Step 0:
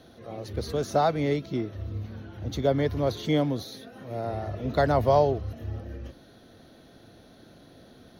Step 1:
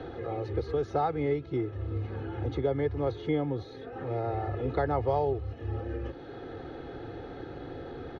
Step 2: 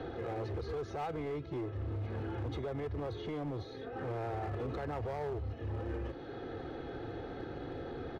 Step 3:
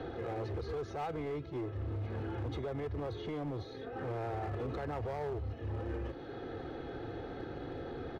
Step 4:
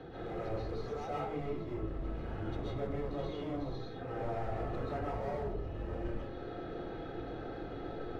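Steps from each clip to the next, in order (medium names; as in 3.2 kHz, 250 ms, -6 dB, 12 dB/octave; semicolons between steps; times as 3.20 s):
low-pass 2.2 kHz 12 dB/octave; comb 2.4 ms, depth 75%; three bands compressed up and down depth 70%; trim -4.5 dB
peak limiter -27 dBFS, peak gain reduction 11 dB; hard clipper -32.5 dBFS, distortion -14 dB; feedback comb 220 Hz, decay 0.69 s, harmonics odd, mix 60%; trim +6.5 dB
attacks held to a fixed rise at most 190 dB/s
octave divider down 1 oct, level -3 dB; algorithmic reverb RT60 0.63 s, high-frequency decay 0.5×, pre-delay 95 ms, DRR -7 dB; trim -7.5 dB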